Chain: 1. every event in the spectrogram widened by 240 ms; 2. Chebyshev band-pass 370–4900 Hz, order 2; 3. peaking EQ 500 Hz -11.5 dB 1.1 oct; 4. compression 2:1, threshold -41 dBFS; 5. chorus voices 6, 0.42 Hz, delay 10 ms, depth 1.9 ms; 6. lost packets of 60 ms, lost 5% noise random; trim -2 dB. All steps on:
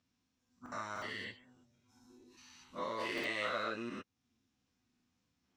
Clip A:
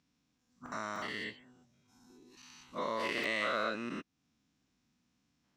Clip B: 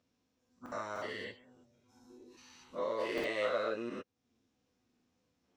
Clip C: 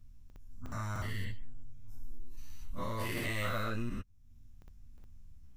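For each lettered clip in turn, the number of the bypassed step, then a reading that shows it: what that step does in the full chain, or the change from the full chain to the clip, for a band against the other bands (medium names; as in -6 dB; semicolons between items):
5, loudness change +3.5 LU; 3, 500 Hz band +8.5 dB; 2, 125 Hz band +19.5 dB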